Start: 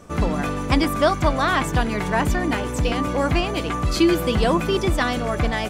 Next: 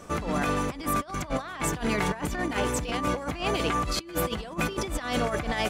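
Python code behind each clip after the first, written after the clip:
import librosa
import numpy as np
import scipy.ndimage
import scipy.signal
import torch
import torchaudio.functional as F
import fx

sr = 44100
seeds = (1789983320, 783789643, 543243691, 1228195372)

y = fx.low_shelf(x, sr, hz=340.0, db=-6.0)
y = fx.over_compress(y, sr, threshold_db=-27.0, ratio=-0.5)
y = y * librosa.db_to_amplitude(-1.5)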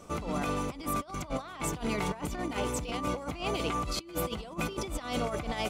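y = fx.peak_eq(x, sr, hz=1700.0, db=-11.5, octaves=0.26)
y = y * librosa.db_to_amplitude(-4.5)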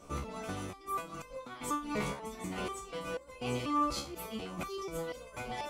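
y = x + 10.0 ** (-8.5 / 20.0) * np.pad(x, (int(757 * sr / 1000.0), 0))[:len(x)]
y = fx.resonator_held(y, sr, hz=4.1, low_hz=70.0, high_hz=520.0)
y = y * librosa.db_to_amplitude(5.0)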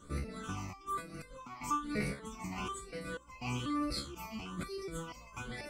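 y = fx.phaser_stages(x, sr, stages=8, low_hz=460.0, high_hz=1000.0, hz=1.1, feedback_pct=20)
y = y * librosa.db_to_amplitude(1.5)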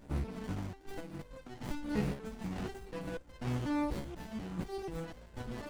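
y = fx.running_max(x, sr, window=33)
y = y * librosa.db_to_amplitude(3.0)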